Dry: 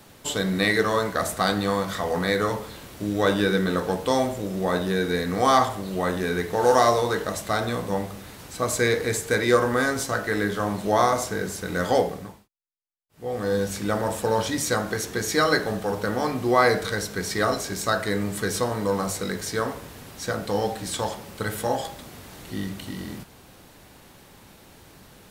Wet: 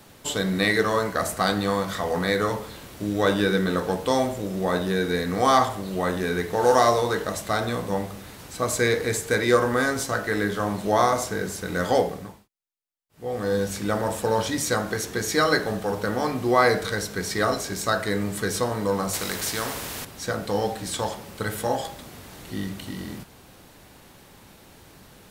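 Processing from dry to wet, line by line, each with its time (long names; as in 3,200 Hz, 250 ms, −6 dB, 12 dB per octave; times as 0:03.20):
0:00.90–0:01.46: notch filter 3,600 Hz
0:19.13–0:20.05: every bin compressed towards the loudest bin 2 to 1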